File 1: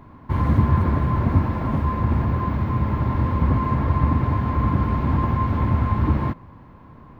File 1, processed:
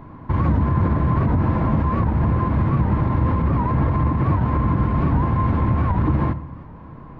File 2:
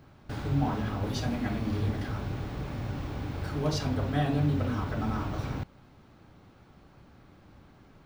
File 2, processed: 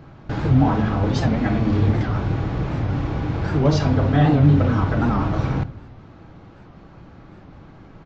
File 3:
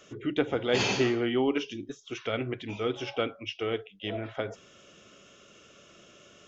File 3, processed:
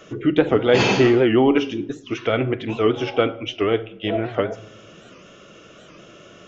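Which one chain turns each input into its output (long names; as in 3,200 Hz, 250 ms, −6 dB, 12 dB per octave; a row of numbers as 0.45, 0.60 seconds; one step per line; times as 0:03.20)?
high-shelf EQ 3,300 Hz −10.5 dB
brickwall limiter −16.5 dBFS
rectangular room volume 2,400 cubic metres, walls furnished, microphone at 0.66 metres
downsampling to 16,000 Hz
wow of a warped record 78 rpm, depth 160 cents
loudness normalisation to −20 LKFS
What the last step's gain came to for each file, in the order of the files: +5.5, +11.0, +11.5 decibels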